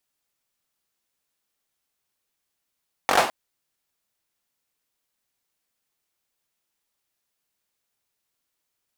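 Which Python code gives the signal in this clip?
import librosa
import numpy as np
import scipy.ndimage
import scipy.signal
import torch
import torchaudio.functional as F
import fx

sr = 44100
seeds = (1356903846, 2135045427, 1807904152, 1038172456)

y = fx.drum_clap(sr, seeds[0], length_s=0.21, bursts=5, spacing_ms=21, hz=750.0, decay_s=0.4)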